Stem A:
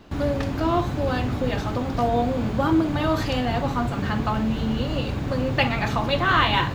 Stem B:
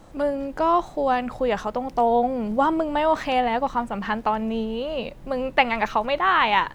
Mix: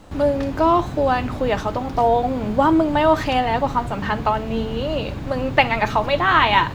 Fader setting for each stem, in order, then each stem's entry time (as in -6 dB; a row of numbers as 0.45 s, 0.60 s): -2.5 dB, +2.5 dB; 0.00 s, 0.00 s